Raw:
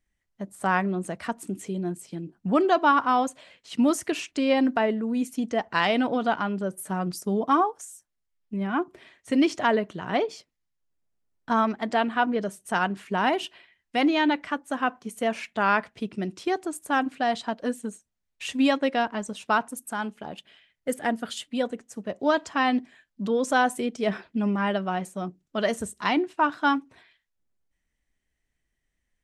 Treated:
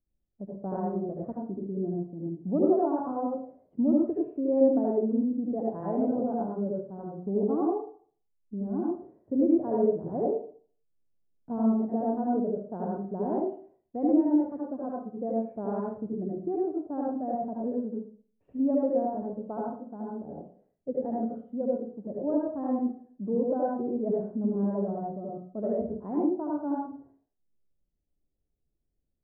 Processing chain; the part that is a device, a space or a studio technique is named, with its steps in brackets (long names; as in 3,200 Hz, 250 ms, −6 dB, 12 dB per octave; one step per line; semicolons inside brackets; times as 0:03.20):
0:06.80–0:07.20: tilt shelving filter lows −5.5 dB, about 1,300 Hz
next room (low-pass filter 600 Hz 24 dB per octave; convolution reverb RT60 0.50 s, pre-delay 66 ms, DRR −5 dB)
level −5 dB